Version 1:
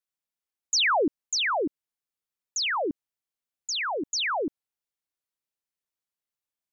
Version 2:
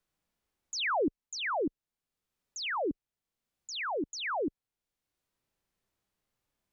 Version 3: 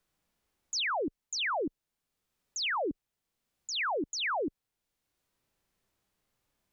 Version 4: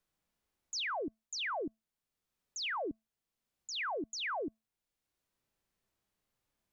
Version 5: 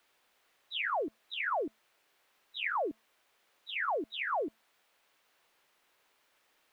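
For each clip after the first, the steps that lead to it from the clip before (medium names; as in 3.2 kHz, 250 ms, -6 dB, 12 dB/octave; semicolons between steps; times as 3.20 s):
harmonic-percussive split harmonic +8 dB; tilt EQ -2.5 dB/octave; three bands compressed up and down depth 40%; trim -6 dB
peak limiter -32.5 dBFS, peak gain reduction 9.5 dB; trim +4.5 dB
feedback comb 220 Hz, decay 0.25 s, harmonics odd, mix 30%; trim -2.5 dB
knee-point frequency compression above 1.2 kHz 1.5:1; added noise white -71 dBFS; three-band isolator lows -15 dB, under 340 Hz, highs -13 dB, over 3.5 kHz; trim +6 dB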